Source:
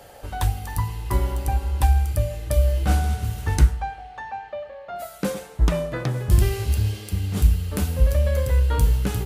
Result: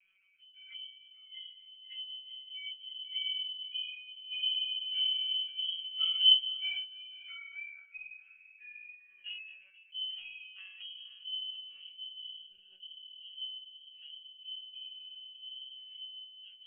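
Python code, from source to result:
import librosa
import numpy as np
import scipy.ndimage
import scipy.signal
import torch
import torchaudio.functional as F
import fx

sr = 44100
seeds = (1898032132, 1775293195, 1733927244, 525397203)

y = fx.spec_expand(x, sr, power=1.9)
y = fx.doppler_pass(y, sr, speed_mps=15, closest_m=7.5, pass_at_s=3.48)
y = fx.highpass(y, sr, hz=67.0, slope=6)
y = fx.notch(y, sr, hz=2000.0, q=6.3)
y = fx.stretch_vocoder(y, sr, factor=1.8)
y = fx.echo_feedback(y, sr, ms=487, feedback_pct=21, wet_db=-19)
y = fx.freq_invert(y, sr, carrier_hz=3100)
y = fx.lpc_monotone(y, sr, seeds[0], pitch_hz=190.0, order=16)
y = F.gain(torch.from_numpy(y), -7.5).numpy()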